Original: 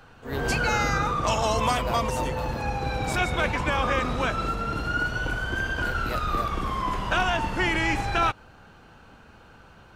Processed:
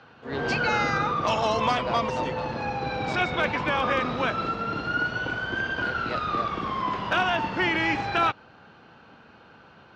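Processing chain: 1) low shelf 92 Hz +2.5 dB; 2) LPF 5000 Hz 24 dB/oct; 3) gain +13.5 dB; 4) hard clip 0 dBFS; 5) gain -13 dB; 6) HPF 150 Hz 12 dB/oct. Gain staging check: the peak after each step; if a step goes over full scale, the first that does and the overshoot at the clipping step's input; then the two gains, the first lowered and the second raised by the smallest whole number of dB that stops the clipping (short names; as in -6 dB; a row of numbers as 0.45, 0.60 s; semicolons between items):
-10.5, -10.0, +3.5, 0.0, -13.0, -11.0 dBFS; step 3, 3.5 dB; step 3 +9.5 dB, step 5 -9 dB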